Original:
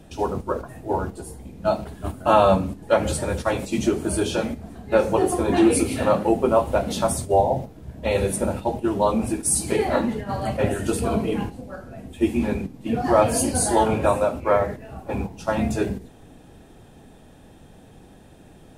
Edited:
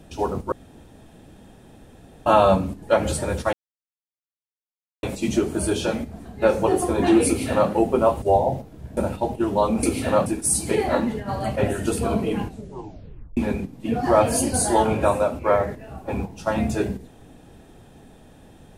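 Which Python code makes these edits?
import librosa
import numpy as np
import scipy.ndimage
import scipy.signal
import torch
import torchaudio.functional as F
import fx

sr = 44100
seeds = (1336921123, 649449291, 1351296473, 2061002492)

y = fx.edit(x, sr, fx.room_tone_fill(start_s=0.52, length_s=1.74),
    fx.insert_silence(at_s=3.53, length_s=1.5),
    fx.duplicate(start_s=5.77, length_s=0.43, to_s=9.27),
    fx.cut(start_s=6.72, length_s=0.54),
    fx.cut(start_s=8.01, length_s=0.4),
    fx.tape_stop(start_s=11.48, length_s=0.9), tone=tone)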